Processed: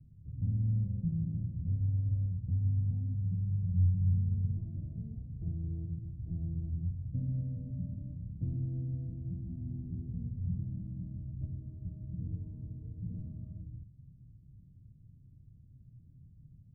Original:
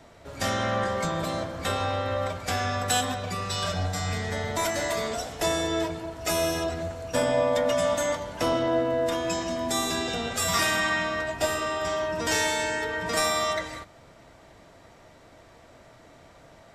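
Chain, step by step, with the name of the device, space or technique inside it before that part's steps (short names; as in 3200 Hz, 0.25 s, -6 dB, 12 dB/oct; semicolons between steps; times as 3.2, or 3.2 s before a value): the neighbour's flat through the wall (LPF 170 Hz 24 dB/oct; bell 120 Hz +6.5 dB 0.95 oct)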